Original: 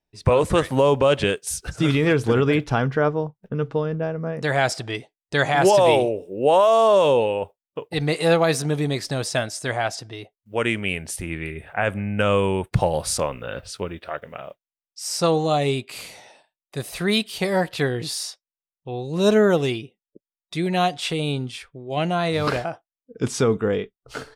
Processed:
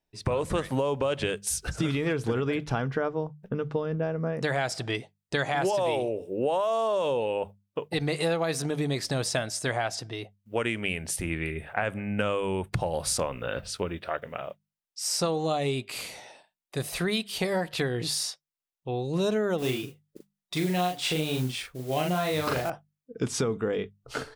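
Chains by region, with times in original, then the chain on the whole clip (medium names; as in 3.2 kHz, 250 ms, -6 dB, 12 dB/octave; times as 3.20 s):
19.58–22.70 s: modulation noise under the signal 17 dB + doubling 39 ms -3 dB
whole clip: compression, threshold -24 dBFS; hum notches 50/100/150/200 Hz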